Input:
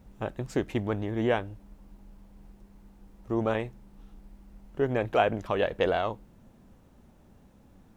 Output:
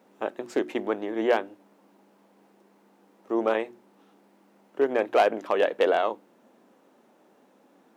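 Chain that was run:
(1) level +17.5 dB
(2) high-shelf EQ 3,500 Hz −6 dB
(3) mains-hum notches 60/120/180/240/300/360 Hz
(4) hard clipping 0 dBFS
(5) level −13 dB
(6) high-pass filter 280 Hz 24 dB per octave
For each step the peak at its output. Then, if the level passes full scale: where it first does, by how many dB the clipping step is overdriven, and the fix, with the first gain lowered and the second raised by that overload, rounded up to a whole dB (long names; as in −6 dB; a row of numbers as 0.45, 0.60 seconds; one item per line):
+9.0, +8.0, +8.0, 0.0, −13.0, −7.5 dBFS
step 1, 8.0 dB
step 1 +9.5 dB, step 5 −5 dB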